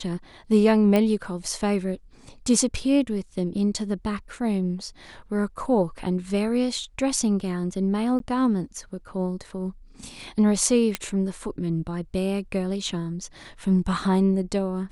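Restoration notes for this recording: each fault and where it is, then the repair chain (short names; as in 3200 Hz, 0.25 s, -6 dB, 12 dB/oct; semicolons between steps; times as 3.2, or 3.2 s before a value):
0.96 pop -10 dBFS
8.19–8.2 gap 12 ms
10.95 pop -8 dBFS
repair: de-click; interpolate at 8.19, 12 ms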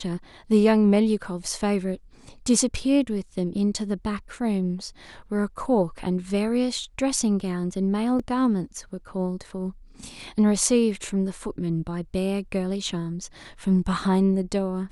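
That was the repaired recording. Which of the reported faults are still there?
none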